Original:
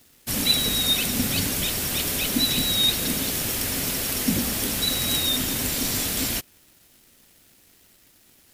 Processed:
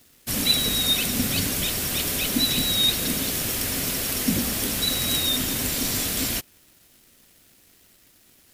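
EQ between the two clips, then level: notch 860 Hz, Q 22; 0.0 dB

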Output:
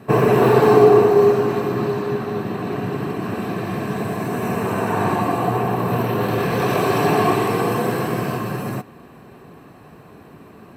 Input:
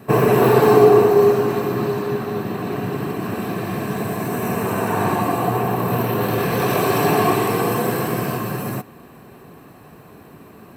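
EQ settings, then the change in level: high shelf 9700 Hz -11.5 dB; 0.0 dB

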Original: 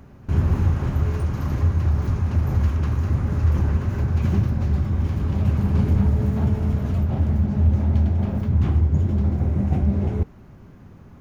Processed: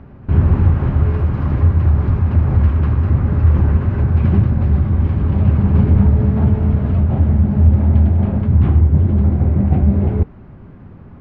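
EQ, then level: air absorption 370 m; +7.0 dB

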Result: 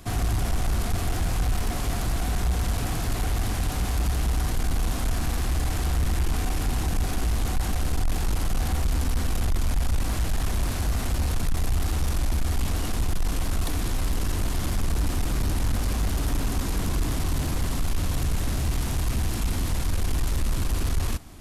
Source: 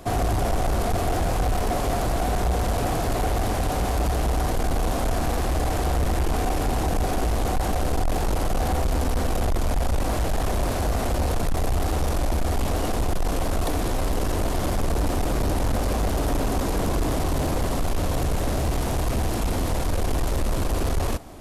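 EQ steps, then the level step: bell 570 Hz -12.5 dB 1.7 oct; 0.0 dB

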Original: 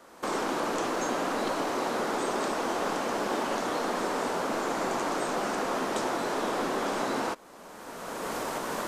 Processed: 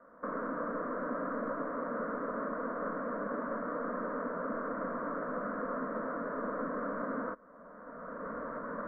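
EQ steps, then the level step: inverse Chebyshev low-pass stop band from 5100 Hz, stop band 60 dB; dynamic EQ 760 Hz, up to -6 dB, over -45 dBFS, Q 2.6; fixed phaser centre 550 Hz, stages 8; -2.0 dB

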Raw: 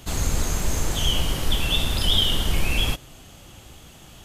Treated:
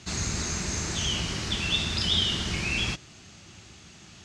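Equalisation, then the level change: speaker cabinet 130–6300 Hz, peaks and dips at 140 Hz -7 dB, 270 Hz -8 dB, 500 Hz -7 dB, 3200 Hz -9 dB; bell 770 Hz -11 dB 1.9 oct; +4.5 dB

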